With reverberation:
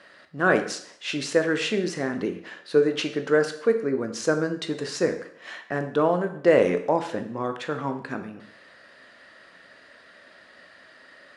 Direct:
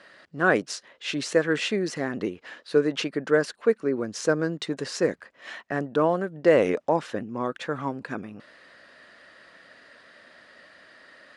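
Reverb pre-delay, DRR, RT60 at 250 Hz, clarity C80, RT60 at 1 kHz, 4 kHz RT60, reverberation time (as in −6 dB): 15 ms, 6.5 dB, 0.65 s, 13.5 dB, 0.70 s, 0.60 s, 0.65 s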